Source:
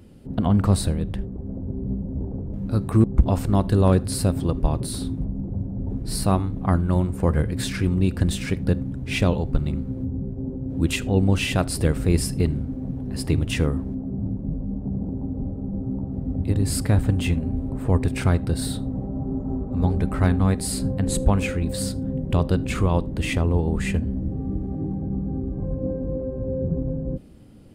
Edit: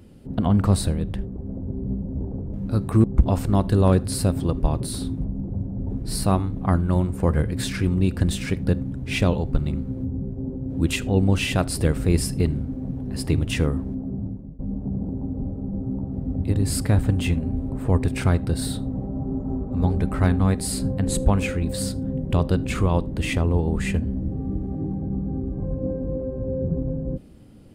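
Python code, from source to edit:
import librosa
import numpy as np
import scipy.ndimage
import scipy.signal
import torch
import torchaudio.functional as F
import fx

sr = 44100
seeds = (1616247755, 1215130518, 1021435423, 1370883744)

y = fx.edit(x, sr, fx.fade_out_to(start_s=14.11, length_s=0.48, floor_db=-21.5), tone=tone)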